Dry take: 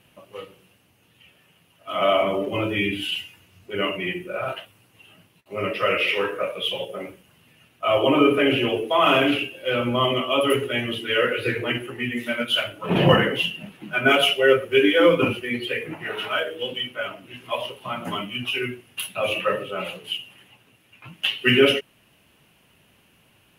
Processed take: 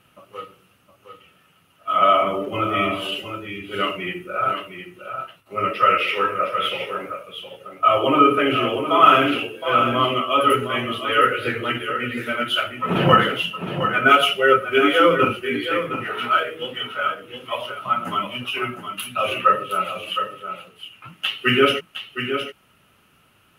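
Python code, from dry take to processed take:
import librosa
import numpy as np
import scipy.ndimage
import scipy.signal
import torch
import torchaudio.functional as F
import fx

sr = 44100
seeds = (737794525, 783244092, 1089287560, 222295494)

p1 = fx.peak_eq(x, sr, hz=1300.0, db=14.5, octaves=0.24)
p2 = p1 + fx.echo_single(p1, sr, ms=714, db=-8.5, dry=0)
y = p2 * librosa.db_to_amplitude(-1.0)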